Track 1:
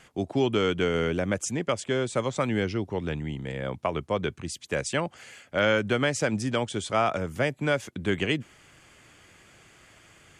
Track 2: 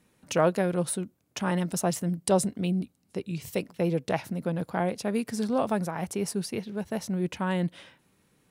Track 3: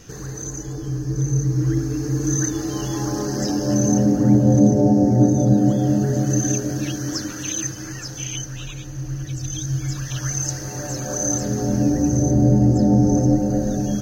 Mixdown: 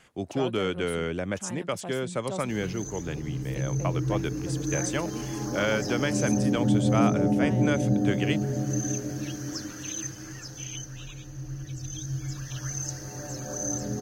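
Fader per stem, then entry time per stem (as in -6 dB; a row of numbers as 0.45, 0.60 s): -3.5, -12.5, -8.5 dB; 0.00, 0.00, 2.40 s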